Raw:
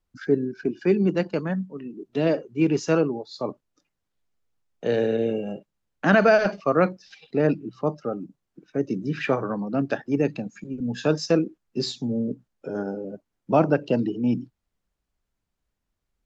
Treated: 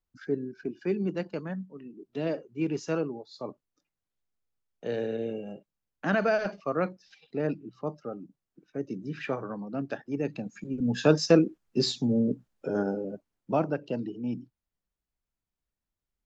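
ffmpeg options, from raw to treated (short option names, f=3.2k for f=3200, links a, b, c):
-af "volume=1dB,afade=t=in:st=10.21:d=0.69:silence=0.334965,afade=t=out:st=12.82:d=0.86:silence=0.298538"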